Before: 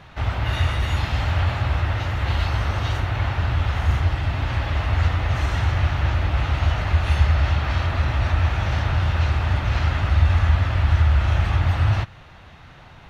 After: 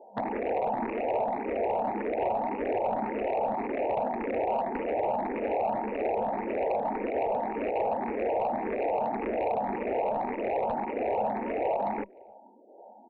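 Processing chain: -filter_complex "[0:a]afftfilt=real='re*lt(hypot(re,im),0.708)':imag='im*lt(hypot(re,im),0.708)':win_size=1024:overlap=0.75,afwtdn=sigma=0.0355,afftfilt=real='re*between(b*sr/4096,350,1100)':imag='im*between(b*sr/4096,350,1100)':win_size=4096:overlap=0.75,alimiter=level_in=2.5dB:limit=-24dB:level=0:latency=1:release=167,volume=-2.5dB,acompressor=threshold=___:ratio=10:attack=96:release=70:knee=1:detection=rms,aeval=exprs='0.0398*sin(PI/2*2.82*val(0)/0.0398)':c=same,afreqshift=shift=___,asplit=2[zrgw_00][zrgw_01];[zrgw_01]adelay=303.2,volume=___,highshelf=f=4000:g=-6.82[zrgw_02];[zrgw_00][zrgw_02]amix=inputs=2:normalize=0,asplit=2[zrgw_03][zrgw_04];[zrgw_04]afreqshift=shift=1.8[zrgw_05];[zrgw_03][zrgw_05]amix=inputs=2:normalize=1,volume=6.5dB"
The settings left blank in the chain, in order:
-45dB, -150, -30dB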